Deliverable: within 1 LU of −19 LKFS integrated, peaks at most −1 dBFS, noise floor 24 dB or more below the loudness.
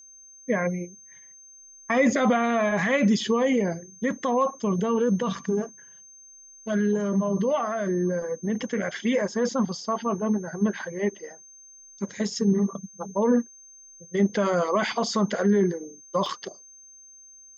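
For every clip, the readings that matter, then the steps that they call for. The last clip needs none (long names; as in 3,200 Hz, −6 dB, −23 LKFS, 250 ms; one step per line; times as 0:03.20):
number of dropouts 1; longest dropout 1.4 ms; interfering tone 6,300 Hz; level of the tone −47 dBFS; integrated loudness −25.5 LKFS; sample peak −10.5 dBFS; target loudness −19.0 LKFS
→ repair the gap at 0:16.26, 1.4 ms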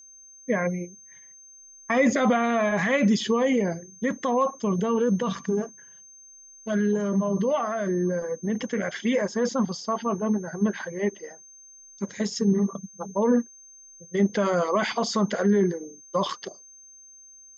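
number of dropouts 0; interfering tone 6,300 Hz; level of the tone −47 dBFS
→ notch filter 6,300 Hz, Q 30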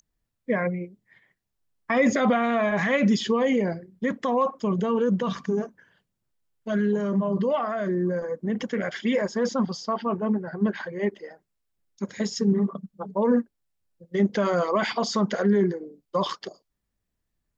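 interfering tone none found; integrated loudness −25.5 LKFS; sample peak −11.0 dBFS; target loudness −19.0 LKFS
→ level +6.5 dB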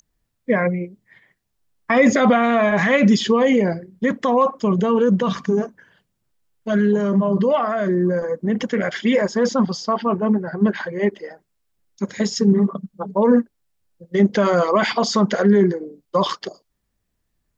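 integrated loudness −19.0 LKFS; sample peak −4.5 dBFS; background noise floor −73 dBFS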